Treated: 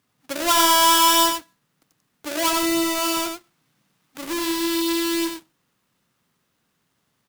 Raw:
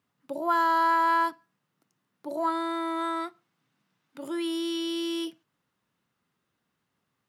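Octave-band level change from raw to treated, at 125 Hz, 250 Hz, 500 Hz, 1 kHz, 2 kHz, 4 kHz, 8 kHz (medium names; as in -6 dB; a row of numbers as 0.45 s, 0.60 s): no reading, +7.0 dB, +6.5 dB, +5.0 dB, +6.0 dB, +16.0 dB, +26.0 dB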